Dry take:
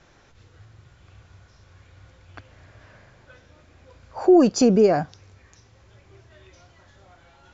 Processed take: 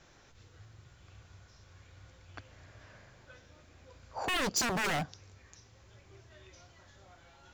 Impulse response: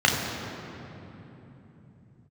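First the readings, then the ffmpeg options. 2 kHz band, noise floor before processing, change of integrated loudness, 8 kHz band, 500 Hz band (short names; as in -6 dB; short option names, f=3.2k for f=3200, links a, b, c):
+4.5 dB, -56 dBFS, -14.5 dB, n/a, -21.5 dB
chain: -af "aeval=exprs='0.0841*(abs(mod(val(0)/0.0841+3,4)-2)-1)':c=same,highshelf=f=4.7k:g=7.5,volume=-5.5dB"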